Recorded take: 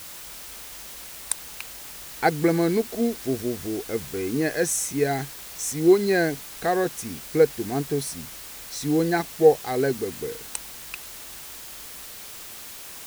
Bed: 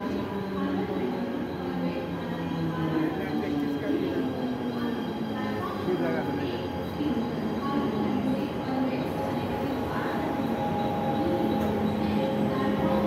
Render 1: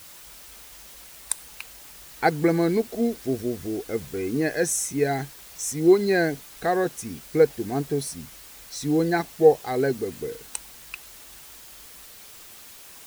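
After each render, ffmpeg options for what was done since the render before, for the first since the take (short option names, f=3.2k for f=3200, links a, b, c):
-af "afftdn=nr=6:nf=-40"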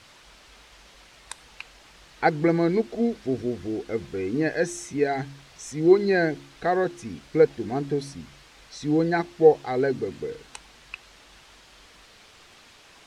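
-af "lowpass=4.3k,bandreject=f=69.52:t=h:w=4,bandreject=f=139.04:t=h:w=4,bandreject=f=208.56:t=h:w=4,bandreject=f=278.08:t=h:w=4,bandreject=f=347.6:t=h:w=4"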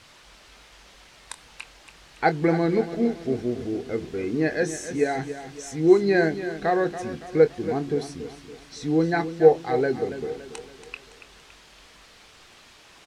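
-filter_complex "[0:a]asplit=2[a][b];[b]adelay=25,volume=-11.5dB[c];[a][c]amix=inputs=2:normalize=0,asplit=2[d][e];[e]aecho=0:1:282|564|846|1128|1410:0.251|0.116|0.0532|0.0244|0.0112[f];[d][f]amix=inputs=2:normalize=0"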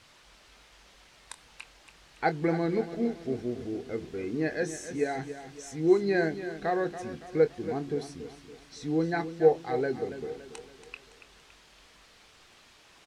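-af "volume=-6dB"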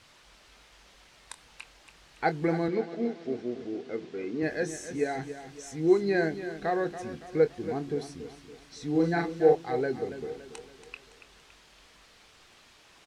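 -filter_complex "[0:a]asettb=1/sr,asplit=3[a][b][c];[a]atrim=end=2.684[d];[b]atrim=start=2.68:end=4.43,asetpts=PTS-STARTPTS,afade=t=in:d=0.004:c=qsin,afade=t=out:st=1.746:d=0.004:c=qsin,highpass=200,lowpass=5.7k[e];[c]atrim=start=4.426[f];[d][e]acrossfade=d=0.004:c1=hsin:c2=qsin[g];[g][f]acrossfade=d=0.004:c1=qsin:c2=hsin,asettb=1/sr,asplit=3[h][i][j];[h]atrim=end=8.914[k];[i]atrim=start=8.91:end=9.55,asetpts=PTS-STARTPTS,afade=t=in:d=0.004:c=qsin,afade=t=out:st=0.636:d=0.004:c=qsin,asplit=2[l][m];[m]adelay=41,volume=-3dB[n];[l][n]amix=inputs=2:normalize=0,atrim=end_sample=28224[o];[j]atrim=start=9.546[p];[k][o]acrossfade=d=0.004:c1=hsin:c2=qsin[q];[q][p]acrossfade=d=0.004:c1=qsin:c2=hsin"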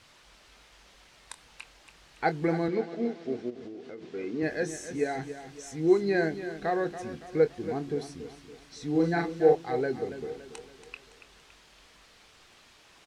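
-filter_complex "[0:a]asplit=3[a][b][c];[a]afade=t=out:st=3.49:d=0.02[d];[b]acompressor=threshold=-38dB:ratio=10:attack=3.2:release=140:knee=1:detection=peak,afade=t=in:st=3.49:d=0.02,afade=t=out:st=4.06:d=0.02[e];[c]afade=t=in:st=4.06:d=0.02[f];[d][e][f]amix=inputs=3:normalize=0"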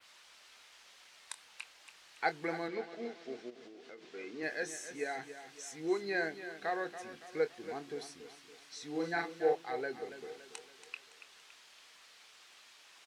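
-af "highpass=f=1.3k:p=1,adynamicequalizer=threshold=0.00126:dfrequency=6600:dqfactor=0.74:tfrequency=6600:tqfactor=0.74:attack=5:release=100:ratio=0.375:range=2.5:mode=cutabove:tftype=bell"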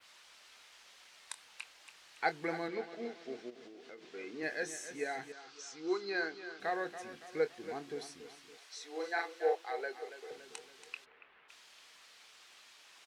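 -filter_complex "[0:a]asettb=1/sr,asplit=3[a][b][c];[a]atrim=end=5.324[d];[b]atrim=start=5.32:end=6.6,asetpts=PTS-STARTPTS,afade=t=in:d=0.004:c=qsin,afade=t=out:st=1.276:d=0.004:c=qsin,highpass=150,equalizer=f=160:t=q:w=4:g=-9,equalizer=f=230:t=q:w=4:g=-10,equalizer=f=620:t=q:w=4:g=-9,equalizer=f=1.3k:t=q:w=4:g=8,equalizer=f=1.9k:t=q:w=4:g=-8,equalizer=f=4.7k:t=q:w=4:g=6,lowpass=f=6.4k:w=0.5412,lowpass=f=6.4k:w=1.3066[e];[c]atrim=start=6.596[f];[d][e]acrossfade=d=0.004:c1=hsin:c2=qsin[g];[g][f]acrossfade=d=0.004:c1=qsin:c2=hsin,asettb=1/sr,asplit=3[h][i][j];[h]atrim=end=8.574[k];[i]atrim=start=8.57:end=10.31,asetpts=PTS-STARTPTS,afade=t=in:d=0.004:c=qsin,afade=t=out:st=1.736:d=0.004:c=qsin,highpass=f=420:w=0.5412,highpass=f=420:w=1.3066[l];[j]atrim=start=10.306[m];[k][l]acrossfade=d=0.004:c1=hsin:c2=qsin[n];[n][m]acrossfade=d=0.004:c1=qsin:c2=hsin,asplit=3[o][p][q];[o]afade=t=out:st=11.04:d=0.02[r];[p]lowpass=f=2.4k:w=0.5412,lowpass=f=2.4k:w=1.3066,afade=t=in:st=11.04:d=0.02,afade=t=out:st=11.48:d=0.02[s];[q]afade=t=in:st=11.48:d=0.02[t];[r][s][t]amix=inputs=3:normalize=0"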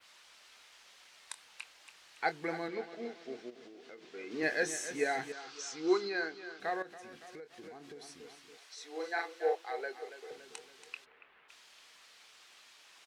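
-filter_complex "[0:a]asplit=3[a][b][c];[a]afade=t=out:st=4.3:d=0.02[d];[b]acontrast=46,afade=t=in:st=4.3:d=0.02,afade=t=out:st=6.07:d=0.02[e];[c]afade=t=in:st=6.07:d=0.02[f];[d][e][f]amix=inputs=3:normalize=0,asettb=1/sr,asplit=3[g][h][i];[g]atrim=end=6.824[j];[h]atrim=start=6.82:end=8.78,asetpts=PTS-STARTPTS,afade=t=in:d=0.004:c=qsin,afade=t=out:st=1.956:d=0.004:c=qsin,acompressor=threshold=-45dB:ratio=12:attack=3.2:release=140:knee=1:detection=peak[k];[i]atrim=start=8.776[l];[j][k]acrossfade=d=0.004:c1=hsin:c2=qsin[m];[m][l]acrossfade=d=0.004:c1=qsin:c2=hsin"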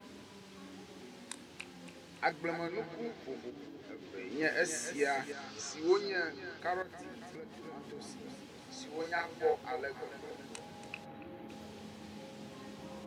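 -filter_complex "[1:a]volume=-23dB[a];[0:a][a]amix=inputs=2:normalize=0"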